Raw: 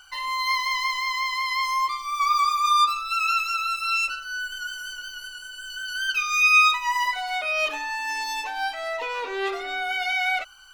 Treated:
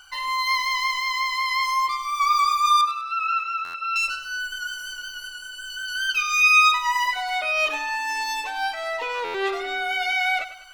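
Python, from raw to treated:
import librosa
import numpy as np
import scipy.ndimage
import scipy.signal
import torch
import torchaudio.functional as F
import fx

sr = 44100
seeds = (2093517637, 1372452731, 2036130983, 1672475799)

y = fx.bandpass_edges(x, sr, low_hz=440.0, high_hz=2000.0, at=(2.81, 3.96))
y = fx.echo_feedback(y, sr, ms=100, feedback_pct=42, wet_db=-14.0)
y = fx.buffer_glitch(y, sr, at_s=(3.64, 9.24), block=512, repeats=8)
y = F.gain(torch.from_numpy(y), 1.5).numpy()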